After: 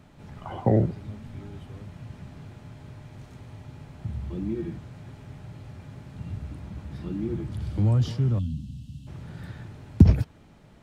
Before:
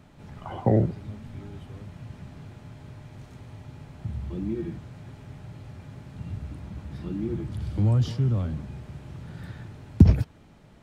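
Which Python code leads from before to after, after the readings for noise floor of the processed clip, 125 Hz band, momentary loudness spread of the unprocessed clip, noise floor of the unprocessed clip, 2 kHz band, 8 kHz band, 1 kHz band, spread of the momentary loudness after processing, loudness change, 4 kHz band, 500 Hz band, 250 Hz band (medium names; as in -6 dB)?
-53 dBFS, 0.0 dB, 21 LU, -53 dBFS, -0.5 dB, no reading, 0.0 dB, 21 LU, 0.0 dB, 0.0 dB, 0.0 dB, 0.0 dB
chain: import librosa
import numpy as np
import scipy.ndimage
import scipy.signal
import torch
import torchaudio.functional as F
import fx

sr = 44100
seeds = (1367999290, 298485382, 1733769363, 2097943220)

y = fx.spec_box(x, sr, start_s=8.39, length_s=0.68, low_hz=280.0, high_hz=2600.0, gain_db=-26)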